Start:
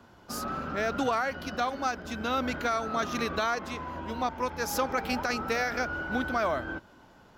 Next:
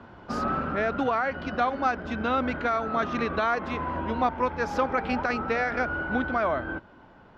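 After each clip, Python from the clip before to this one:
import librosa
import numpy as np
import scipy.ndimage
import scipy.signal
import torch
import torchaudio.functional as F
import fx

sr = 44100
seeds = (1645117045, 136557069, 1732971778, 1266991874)

y = scipy.signal.sosfilt(scipy.signal.butter(2, 2500.0, 'lowpass', fs=sr, output='sos'), x)
y = fx.rider(y, sr, range_db=4, speed_s=0.5)
y = F.gain(torch.from_numpy(y), 4.0).numpy()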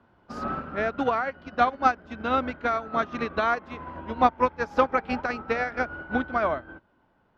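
y = fx.upward_expand(x, sr, threshold_db=-34.0, expansion=2.5)
y = F.gain(torch.from_numpy(y), 6.5).numpy()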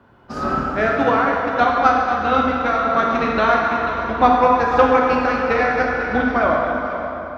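y = fx.rider(x, sr, range_db=10, speed_s=2.0)
y = y + 10.0 ** (-11.0 / 20.0) * np.pad(y, (int(491 * sr / 1000.0), 0))[:len(y)]
y = fx.rev_plate(y, sr, seeds[0], rt60_s=3.0, hf_ratio=0.75, predelay_ms=0, drr_db=-2.0)
y = F.gain(torch.from_numpy(y), 4.0).numpy()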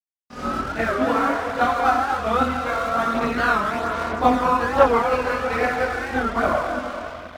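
y = np.sign(x) * np.maximum(np.abs(x) - 10.0 ** (-32.5 / 20.0), 0.0)
y = fx.chorus_voices(y, sr, voices=2, hz=0.62, base_ms=23, depth_ms=2.1, mix_pct=60)
y = fx.record_warp(y, sr, rpm=45.0, depth_cents=160.0)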